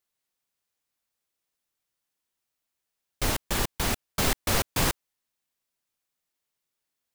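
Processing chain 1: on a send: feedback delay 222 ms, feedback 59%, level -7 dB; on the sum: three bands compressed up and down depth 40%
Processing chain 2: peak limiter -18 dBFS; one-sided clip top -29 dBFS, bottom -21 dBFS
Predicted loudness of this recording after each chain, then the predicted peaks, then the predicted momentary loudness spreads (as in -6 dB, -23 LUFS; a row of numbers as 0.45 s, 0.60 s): -28.0 LUFS, -32.0 LUFS; -11.0 dBFS, -19.5 dBFS; 17 LU, 3 LU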